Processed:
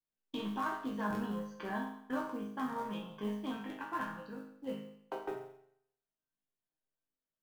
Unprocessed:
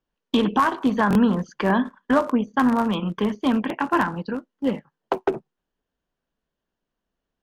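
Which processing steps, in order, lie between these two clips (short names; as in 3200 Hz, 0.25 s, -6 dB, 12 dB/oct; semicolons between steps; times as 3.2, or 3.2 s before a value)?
resonator bank G#2 major, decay 0.69 s; modulation noise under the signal 30 dB; gain +1.5 dB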